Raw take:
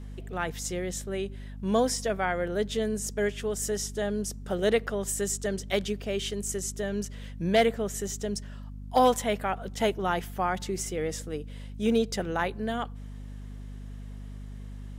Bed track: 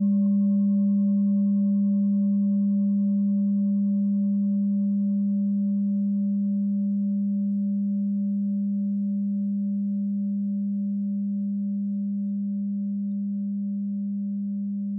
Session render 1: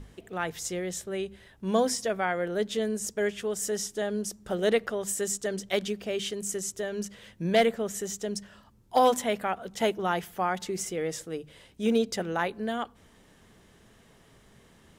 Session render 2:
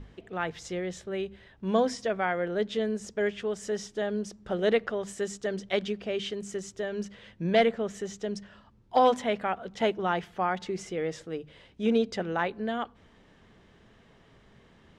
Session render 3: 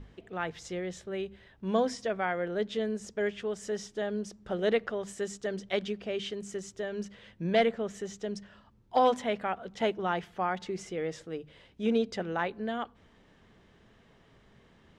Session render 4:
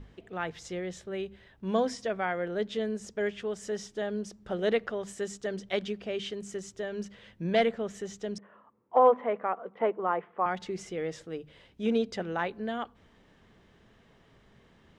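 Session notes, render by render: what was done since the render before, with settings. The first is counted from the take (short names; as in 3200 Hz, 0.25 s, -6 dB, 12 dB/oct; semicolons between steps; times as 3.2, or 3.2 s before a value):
notches 50/100/150/200/250 Hz
LPF 4000 Hz 12 dB/oct
gain -2.5 dB
8.38–10.46 speaker cabinet 280–2000 Hz, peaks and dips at 480 Hz +6 dB, 1100 Hz +8 dB, 1600 Hz -5 dB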